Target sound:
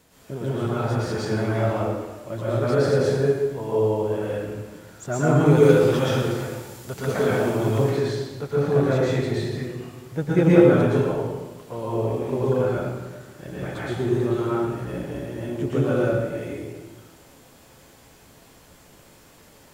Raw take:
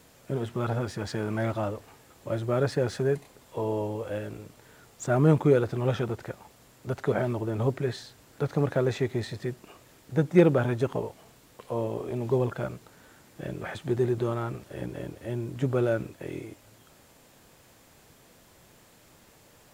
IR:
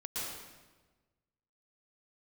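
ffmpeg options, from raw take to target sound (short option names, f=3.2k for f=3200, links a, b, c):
-filter_complex "[0:a]asettb=1/sr,asplit=3[a][b][c];[a]atrim=end=5.454[d];[b]atrim=start=5.45:end=7.78,asetpts=PTS-STARTPTS,afade=t=in:d=0.004:c=qsin,afade=t=out:st=2.326:d=0.004:c=qsin,highshelf=f=2.6k:g=11[e];[c]atrim=start=7.776[f];[d][e]acrossfade=d=0.004:c1=hsin:c2=qsin[g];[g][f]acrossfade=d=0.004:c1=qsin:c2=hsin[h];[1:a]atrim=start_sample=2205[i];[h][i]afir=irnorm=-1:irlink=0,volume=3dB"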